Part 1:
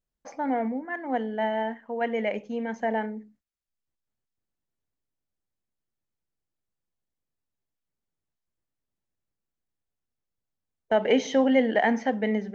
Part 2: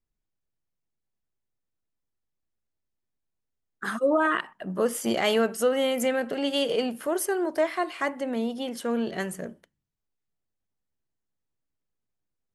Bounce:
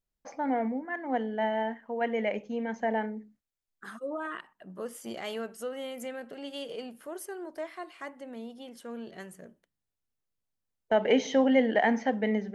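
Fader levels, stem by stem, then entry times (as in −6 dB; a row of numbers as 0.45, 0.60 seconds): −2.0, −13.0 decibels; 0.00, 0.00 seconds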